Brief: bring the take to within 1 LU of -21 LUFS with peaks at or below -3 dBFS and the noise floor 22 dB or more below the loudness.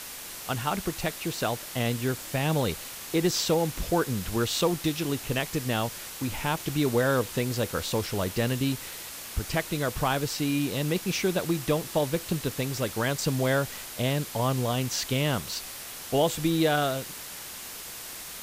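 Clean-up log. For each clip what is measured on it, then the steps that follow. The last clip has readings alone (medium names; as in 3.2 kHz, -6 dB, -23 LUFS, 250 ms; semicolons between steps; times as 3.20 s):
noise floor -40 dBFS; noise floor target -51 dBFS; loudness -28.5 LUFS; peak level -11.5 dBFS; loudness target -21.0 LUFS
-> noise reduction 11 dB, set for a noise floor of -40 dBFS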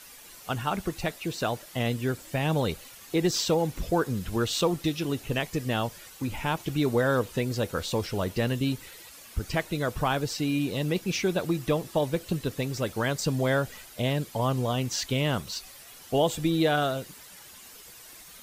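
noise floor -49 dBFS; noise floor target -51 dBFS
-> noise reduction 6 dB, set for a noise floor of -49 dBFS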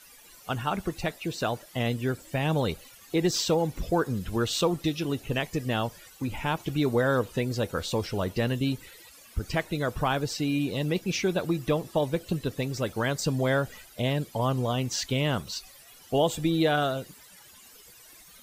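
noise floor -52 dBFS; loudness -28.5 LUFS; peak level -11.5 dBFS; loudness target -21.0 LUFS
-> trim +7.5 dB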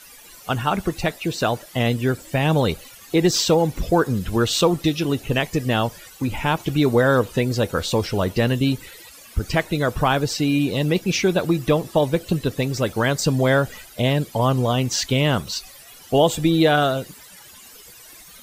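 loudness -21.0 LUFS; peak level -4.0 dBFS; noise floor -45 dBFS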